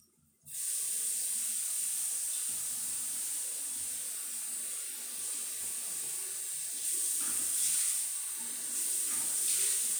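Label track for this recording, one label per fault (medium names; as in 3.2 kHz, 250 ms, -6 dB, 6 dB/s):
2.520000	4.700000	clipped -32.5 dBFS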